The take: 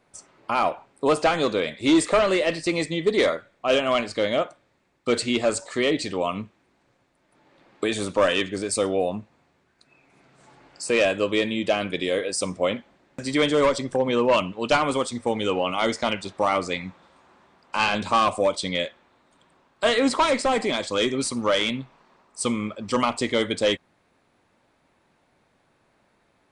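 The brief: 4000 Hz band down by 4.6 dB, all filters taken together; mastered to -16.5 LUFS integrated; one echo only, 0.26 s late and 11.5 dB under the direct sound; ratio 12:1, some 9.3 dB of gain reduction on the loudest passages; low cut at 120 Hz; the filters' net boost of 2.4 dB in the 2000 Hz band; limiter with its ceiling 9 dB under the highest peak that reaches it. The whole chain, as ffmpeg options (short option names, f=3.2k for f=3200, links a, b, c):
-af "highpass=120,equalizer=f=2k:t=o:g=5.5,equalizer=f=4k:t=o:g=-9,acompressor=threshold=-24dB:ratio=12,alimiter=limit=-20.5dB:level=0:latency=1,aecho=1:1:260:0.266,volume=15dB"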